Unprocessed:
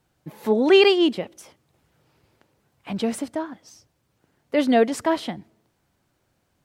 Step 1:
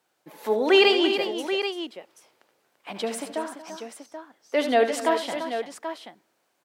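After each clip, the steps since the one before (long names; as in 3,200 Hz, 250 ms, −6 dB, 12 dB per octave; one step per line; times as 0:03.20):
high-pass filter 430 Hz 12 dB per octave
on a send: multi-tap delay 75/92/233/340/782 ms −10.5/−17.5/−16.5/−10/−9.5 dB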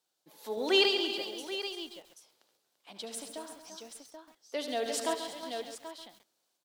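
high shelf with overshoot 2,900 Hz +8 dB, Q 1.5
sample-and-hold tremolo
feedback echo at a low word length 136 ms, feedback 35%, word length 7 bits, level −9 dB
level −9 dB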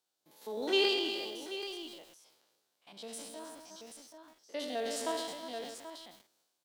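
spectrum averaged block by block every 50 ms
transient designer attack −1 dB, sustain +6 dB
level −2 dB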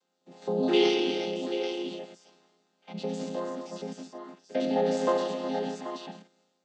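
channel vocoder with a chord as carrier minor triad, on F3
in parallel at +2 dB: downward compressor, threshold −44 dBFS, peak gain reduction 17 dB
on the sum: level +6 dB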